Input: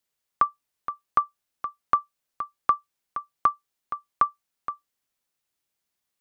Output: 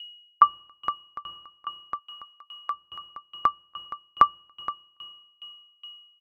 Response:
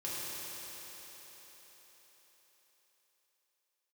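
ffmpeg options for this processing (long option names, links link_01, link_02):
-filter_complex "[0:a]asplit=2[link_01][link_02];[link_02]aemphasis=mode=reproduction:type=riaa[link_03];[1:a]atrim=start_sample=2205[link_04];[link_03][link_04]afir=irnorm=-1:irlink=0,volume=-27.5dB[link_05];[link_01][link_05]amix=inputs=2:normalize=0,aeval=exprs='val(0)+0.00631*sin(2*PI*2900*n/s)':channel_layout=same,asettb=1/sr,asplit=3[link_06][link_07][link_08];[link_06]atrim=end=1.994[link_09];[link_07]atrim=start=1.99:end=2.71,asetpts=PTS-STARTPTS,afade=type=in:duration=0.004:curve=qsin,afade=type=out:start_time=0.716:duration=0.004:curve=qsin,highpass=frequency=1300:poles=1[link_10];[link_08]atrim=start=2.706[link_11];[link_09][link_10]acrossfade=duration=0.004:curve1=hsin:curve2=qsin[link_12];[link_12][link_11]acrossfade=duration=0.004:curve1=qsin:curve2=hsin,aecho=1:1:283:0.0708,aeval=exprs='val(0)*pow(10,-30*if(lt(mod(2.4*n/s,1),2*abs(2.4)/1000),1-mod(2.4*n/s,1)/(2*abs(2.4)/1000),(mod(2.4*n/s,1)-2*abs(2.4)/1000)/(1-2*abs(2.4)/1000))/20)':channel_layout=same,volume=8dB"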